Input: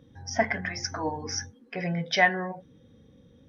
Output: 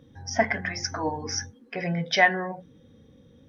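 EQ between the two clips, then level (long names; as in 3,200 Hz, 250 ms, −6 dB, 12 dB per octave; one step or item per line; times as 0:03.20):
mains-hum notches 60/120/180 Hz
+2.0 dB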